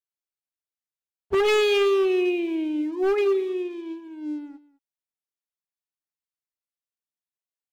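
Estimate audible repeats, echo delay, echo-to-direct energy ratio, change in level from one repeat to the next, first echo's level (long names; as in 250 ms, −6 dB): 1, 208 ms, −19.0 dB, repeats not evenly spaced, −19.0 dB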